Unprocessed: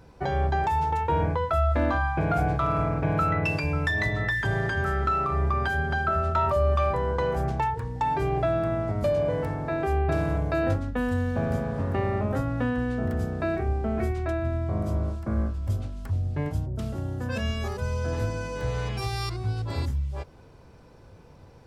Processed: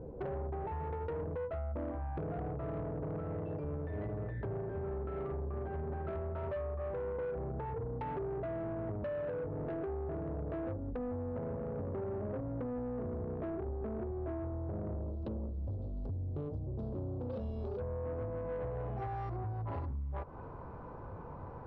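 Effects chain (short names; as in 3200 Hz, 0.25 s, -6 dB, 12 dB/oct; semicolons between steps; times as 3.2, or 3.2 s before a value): low-pass sweep 490 Hz -> 1100 Hz, 17.69–20.32; compressor 10:1, threshold -36 dBFS, peak gain reduction 18.5 dB; soft clip -37.5 dBFS, distortion -13 dB; 15.02–17.8 resonant high shelf 2800 Hz +13.5 dB, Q 3; gain +4 dB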